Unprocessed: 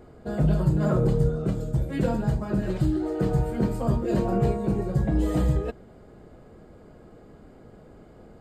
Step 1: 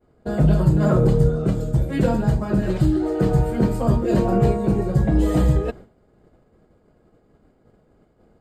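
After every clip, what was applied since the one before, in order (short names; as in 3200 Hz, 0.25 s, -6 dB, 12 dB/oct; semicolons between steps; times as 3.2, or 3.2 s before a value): expander -38 dBFS; gain +5.5 dB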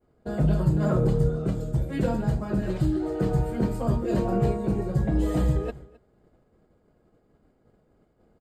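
echo 0.263 s -22 dB; gain -6 dB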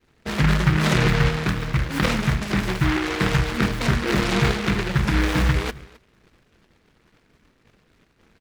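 noise-modulated delay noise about 1500 Hz, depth 0.32 ms; gain +3.5 dB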